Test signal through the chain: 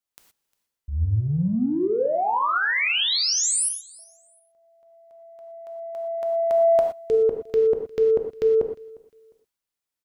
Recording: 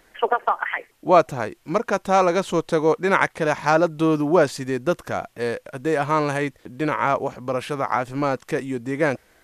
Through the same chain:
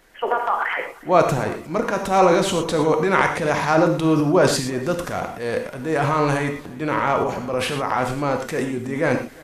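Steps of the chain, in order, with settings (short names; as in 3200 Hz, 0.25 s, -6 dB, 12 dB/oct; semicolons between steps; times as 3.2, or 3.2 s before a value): transient shaper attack -4 dB, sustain +9 dB; on a send: feedback echo 0.354 s, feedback 26%, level -23.5 dB; on the sum: non-linear reverb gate 0.14 s flat, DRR 4 dB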